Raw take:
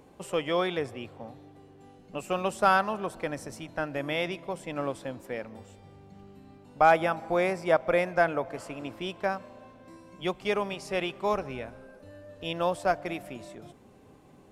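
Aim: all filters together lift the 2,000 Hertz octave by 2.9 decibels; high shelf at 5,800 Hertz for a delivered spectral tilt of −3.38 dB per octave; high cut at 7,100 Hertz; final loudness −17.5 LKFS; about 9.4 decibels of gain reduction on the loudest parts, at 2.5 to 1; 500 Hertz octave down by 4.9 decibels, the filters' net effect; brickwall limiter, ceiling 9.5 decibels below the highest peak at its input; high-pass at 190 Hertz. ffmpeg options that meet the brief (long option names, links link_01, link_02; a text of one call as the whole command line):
ffmpeg -i in.wav -af "highpass=190,lowpass=7100,equalizer=frequency=500:width_type=o:gain=-6.5,equalizer=frequency=2000:width_type=o:gain=3.5,highshelf=frequency=5800:gain=8,acompressor=threshold=-31dB:ratio=2.5,volume=22dB,alimiter=limit=-4dB:level=0:latency=1" out.wav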